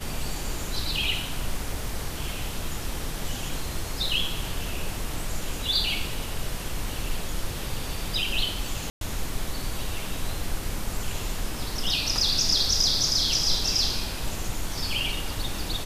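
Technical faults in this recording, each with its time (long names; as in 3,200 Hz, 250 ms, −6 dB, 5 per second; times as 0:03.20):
0:08.90–0:09.01: drop-out 112 ms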